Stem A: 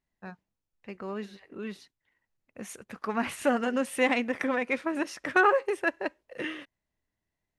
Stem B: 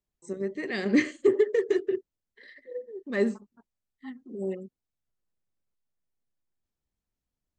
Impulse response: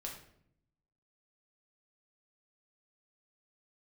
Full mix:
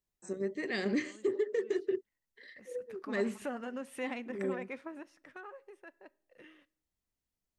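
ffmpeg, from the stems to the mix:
-filter_complex "[0:a]acompressor=threshold=-43dB:ratio=1.5,adynamicequalizer=threshold=0.00447:dfrequency=1700:dqfactor=0.7:tfrequency=1700:tqfactor=0.7:attack=5:release=100:ratio=0.375:range=2.5:mode=cutabove:tftype=highshelf,volume=-6dB,afade=t=in:st=2.63:d=0.77:silence=0.281838,afade=t=out:st=4.81:d=0.32:silence=0.251189,asplit=2[a][b];[b]volume=-17.5dB[c];[1:a]bass=f=250:g=-2,treble=f=4k:g=3,volume=-3dB[d];[2:a]atrim=start_sample=2205[e];[c][e]afir=irnorm=-1:irlink=0[f];[a][d][f]amix=inputs=3:normalize=0,alimiter=limit=-22.5dB:level=0:latency=1:release=203"

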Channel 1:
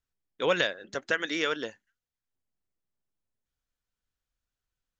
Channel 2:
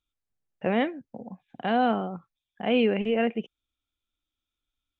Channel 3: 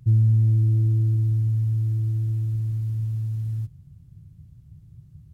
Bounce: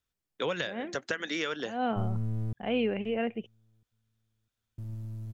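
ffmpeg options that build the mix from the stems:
-filter_complex "[0:a]highpass=44,acrossover=split=170[a][b];[b]acompressor=threshold=-31dB:ratio=6[c];[a][c]amix=inputs=2:normalize=0,volume=2dB,asplit=2[d][e];[1:a]volume=-6dB[f];[2:a]equalizer=f=170:w=0.55:g=-5,aeval=exprs='clip(val(0),-1,0.02)':c=same,adelay=1900,volume=-6.5dB,asplit=3[g][h][i];[g]atrim=end=2.53,asetpts=PTS-STARTPTS,afade=t=out:st=2.526:d=0.004:c=hsin[j];[h]atrim=start=2.53:end=4.78,asetpts=PTS-STARTPTS,volume=0[k];[i]atrim=start=4.78,asetpts=PTS-STARTPTS,afade=t=in:d=0.004:c=hsin[l];[j][k][l]concat=n=3:v=0:a=1,asplit=2[m][n];[n]volume=-23dB[o];[e]apad=whole_len=220140[p];[f][p]sidechaincompress=threshold=-46dB:ratio=8:attack=9.3:release=149[q];[o]aecho=0:1:651|1302|1953|2604:1|0.26|0.0676|0.0176[r];[d][q][m][r]amix=inputs=4:normalize=0"

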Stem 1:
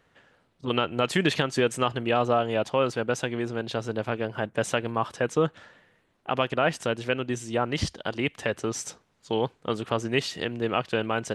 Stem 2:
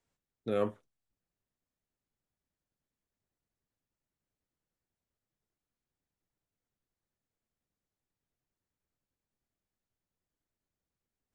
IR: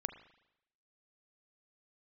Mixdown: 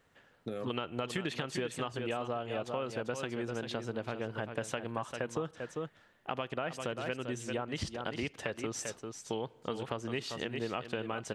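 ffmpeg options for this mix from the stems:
-filter_complex "[0:a]volume=-6dB,asplit=3[a][b][c];[b]volume=-14dB[d];[c]volume=-8dB[e];[1:a]bass=f=250:g=2,treble=f=4k:g=5,acompressor=threshold=-36dB:ratio=6,volume=1dB[f];[2:a]atrim=start_sample=2205[g];[d][g]afir=irnorm=-1:irlink=0[h];[e]aecho=0:1:395:1[i];[a][f][h][i]amix=inputs=4:normalize=0,acompressor=threshold=-32dB:ratio=6"

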